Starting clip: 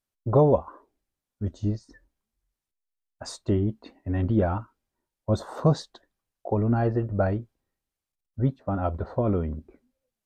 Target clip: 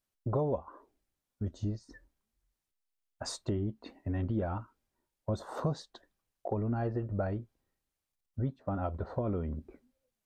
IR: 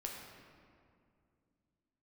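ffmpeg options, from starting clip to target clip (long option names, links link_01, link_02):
-af "acompressor=threshold=-34dB:ratio=2.5"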